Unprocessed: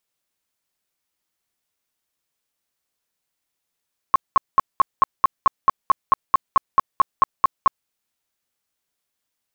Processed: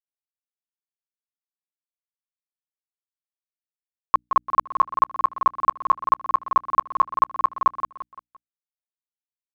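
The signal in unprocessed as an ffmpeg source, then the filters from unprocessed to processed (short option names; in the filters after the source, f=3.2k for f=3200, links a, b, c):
-f lavfi -i "aevalsrc='0.355*sin(2*PI*1080*mod(t,0.22))*lt(mod(t,0.22),18/1080)':d=3.74:s=44100"
-filter_complex "[0:a]aeval=exprs='val(0)*gte(abs(val(0)),0.00501)':c=same,bandreject=f=60:t=h:w=6,bandreject=f=120:t=h:w=6,bandreject=f=180:t=h:w=6,bandreject=f=240:t=h:w=6,bandreject=f=300:t=h:w=6,asplit=2[a][b];[b]aecho=0:1:172|344|516|688:0.376|0.15|0.0601|0.0241[c];[a][c]amix=inputs=2:normalize=0"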